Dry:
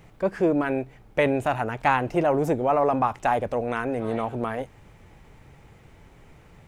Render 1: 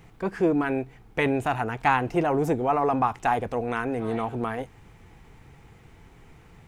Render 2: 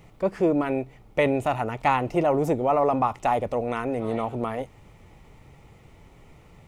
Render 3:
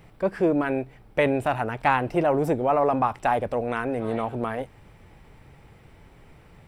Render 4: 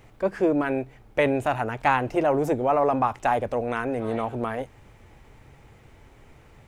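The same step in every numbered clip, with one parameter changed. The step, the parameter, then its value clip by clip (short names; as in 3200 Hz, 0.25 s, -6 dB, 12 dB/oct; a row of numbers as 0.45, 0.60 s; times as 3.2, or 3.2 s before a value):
notch, frequency: 580, 1600, 6600, 170 Hz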